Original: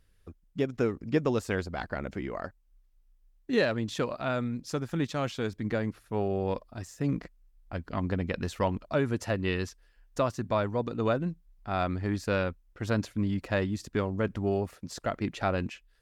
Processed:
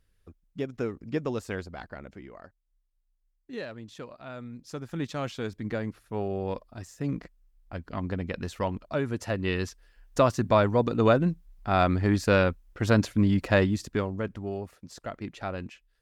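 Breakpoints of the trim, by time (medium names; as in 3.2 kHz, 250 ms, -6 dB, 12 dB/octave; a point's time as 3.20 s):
1.54 s -3.5 dB
2.39 s -11.5 dB
4.26 s -11.5 dB
5.09 s -1.5 dB
9.10 s -1.5 dB
10.28 s +6.5 dB
13.62 s +6.5 dB
14.43 s -5.5 dB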